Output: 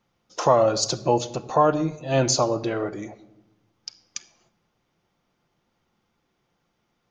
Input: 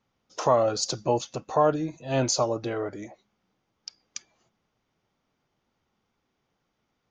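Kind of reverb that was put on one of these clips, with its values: shoebox room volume 3900 m³, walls furnished, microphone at 0.84 m; gain +3.5 dB

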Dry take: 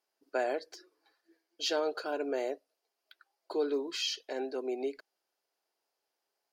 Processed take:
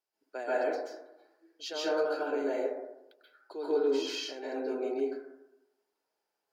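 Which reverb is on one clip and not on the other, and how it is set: plate-style reverb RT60 0.92 s, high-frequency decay 0.3×, pre-delay 0.12 s, DRR -8.5 dB; gain -8 dB

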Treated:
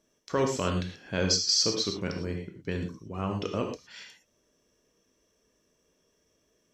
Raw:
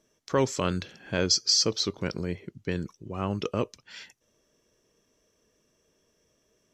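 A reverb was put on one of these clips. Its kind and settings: non-linear reverb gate 0.14 s flat, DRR 3 dB; gain -3 dB

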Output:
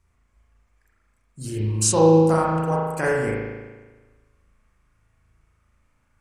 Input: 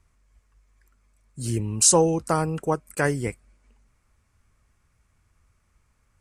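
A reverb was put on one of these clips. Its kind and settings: spring tank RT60 1.3 s, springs 37 ms, chirp 65 ms, DRR -5 dB; gain -4 dB

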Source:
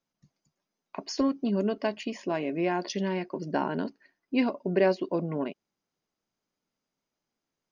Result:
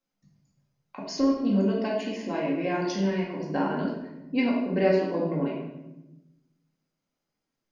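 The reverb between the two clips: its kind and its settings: shoebox room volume 400 m³, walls mixed, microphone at 2.1 m; gain -4.5 dB

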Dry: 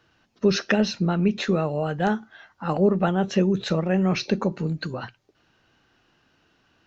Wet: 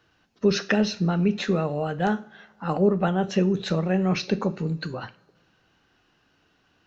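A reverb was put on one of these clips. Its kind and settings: two-slope reverb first 0.41 s, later 2.1 s, from -21 dB, DRR 12 dB; gain -1.5 dB

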